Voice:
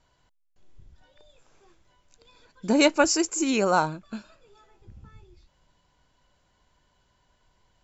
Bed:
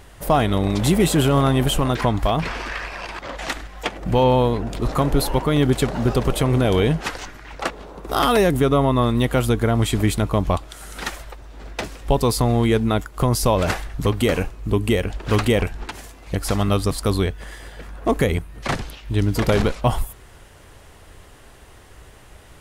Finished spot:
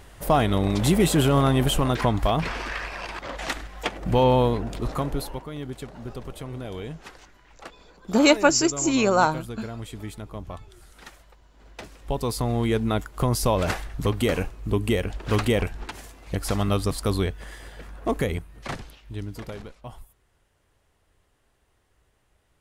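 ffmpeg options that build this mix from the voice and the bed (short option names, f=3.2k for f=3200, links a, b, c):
-filter_complex "[0:a]adelay=5450,volume=2.5dB[a];[1:a]volume=10.5dB,afade=t=out:st=4.48:d=0.98:silence=0.188365,afade=t=in:st=11.5:d=1.5:silence=0.223872,afade=t=out:st=17.72:d=1.9:silence=0.133352[b];[a][b]amix=inputs=2:normalize=0"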